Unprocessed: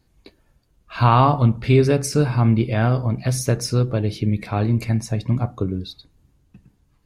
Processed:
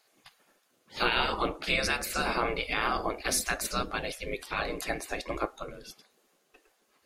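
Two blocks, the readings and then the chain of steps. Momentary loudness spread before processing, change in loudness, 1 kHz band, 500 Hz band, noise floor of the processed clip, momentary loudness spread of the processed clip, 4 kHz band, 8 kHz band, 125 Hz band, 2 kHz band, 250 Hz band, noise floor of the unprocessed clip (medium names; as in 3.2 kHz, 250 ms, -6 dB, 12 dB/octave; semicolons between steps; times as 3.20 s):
9 LU, -10.5 dB, -8.5 dB, -11.0 dB, -71 dBFS, 10 LU, +0.5 dB, -3.5 dB, -27.0 dB, +2.0 dB, -17.0 dB, -63 dBFS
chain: band-stop 930 Hz, Q 8; spectral gate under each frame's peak -20 dB weak; in parallel at +1 dB: peak limiter -23.5 dBFS, peak gain reduction 9.5 dB; on the sum: trim -1 dB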